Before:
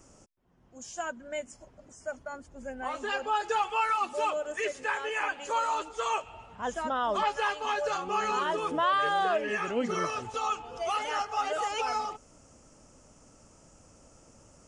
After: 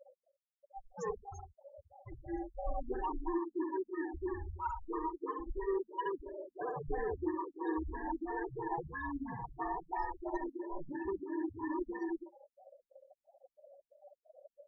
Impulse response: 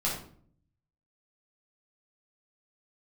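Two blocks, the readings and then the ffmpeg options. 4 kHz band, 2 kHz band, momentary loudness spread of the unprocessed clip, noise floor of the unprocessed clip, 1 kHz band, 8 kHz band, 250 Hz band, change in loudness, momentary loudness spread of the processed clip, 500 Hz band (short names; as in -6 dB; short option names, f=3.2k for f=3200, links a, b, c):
under -30 dB, -15.0 dB, 12 LU, -59 dBFS, -11.5 dB, under -20 dB, +2.5 dB, -9.0 dB, 11 LU, -6.5 dB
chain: -af "afftfilt=real='real(if(lt(b,1008),b+24*(1-2*mod(floor(b/24),2)),b),0)':imag='imag(if(lt(b,1008),b+24*(1-2*mod(floor(b/24),2)),b),0)':win_size=2048:overlap=0.75,acompressor=threshold=-34dB:ratio=16,flanger=delay=3.3:depth=3.4:regen=8:speed=1.1:shape=sinusoidal,firequalizer=gain_entry='entry(140,0);entry(220,-8);entry(350,12);entry(3200,-19)':delay=0.05:min_phase=1,aexciter=amount=14:drive=2.2:freq=3.4k,asoftclip=type=hard:threshold=-29.5dB,flanger=delay=2.4:depth=8.9:regen=-79:speed=0.49:shape=triangular,bandreject=f=50:t=h:w=6,bandreject=f=100:t=h:w=6,bandreject=f=150:t=h:w=6,bandreject=f=200:t=h:w=6,bandreject=f=250:t=h:w=6,bandreject=f=300:t=h:w=6,bandreject=f=350:t=h:w=6,bandreject=f=400:t=h:w=6,bandreject=f=450:t=h:w=6,afftfilt=real='re*gte(hypot(re,im),0.0112)':imag='im*gte(hypot(re,im),0.0112)':win_size=1024:overlap=0.75,asubboost=boost=4:cutoff=57,aecho=1:1:69.97|119.5:0.631|0.251,afftfilt=real='re*lt(b*sr/1024,250*pow(7600/250,0.5+0.5*sin(2*PI*3*pts/sr)))':imag='im*lt(b*sr/1024,250*pow(7600/250,0.5+0.5*sin(2*PI*3*pts/sr)))':win_size=1024:overlap=0.75,volume=3.5dB"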